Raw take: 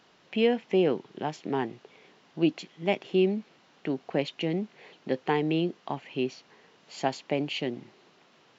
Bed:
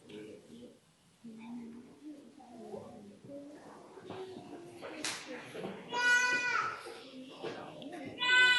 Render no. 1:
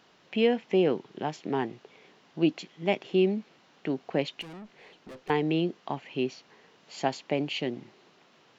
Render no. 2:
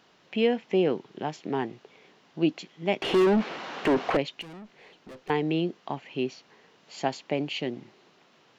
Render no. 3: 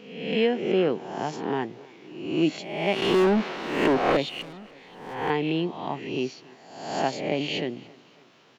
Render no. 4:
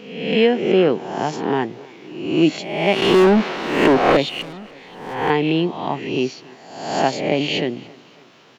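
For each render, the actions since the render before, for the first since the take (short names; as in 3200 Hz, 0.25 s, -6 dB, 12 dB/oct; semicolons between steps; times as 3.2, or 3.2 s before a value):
4.41–5.3 tube stage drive 42 dB, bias 0.35
3.02–4.17 overdrive pedal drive 35 dB, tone 1400 Hz, clips at -14 dBFS
spectral swells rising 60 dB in 0.86 s; feedback echo 0.284 s, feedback 48%, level -23.5 dB
gain +7.5 dB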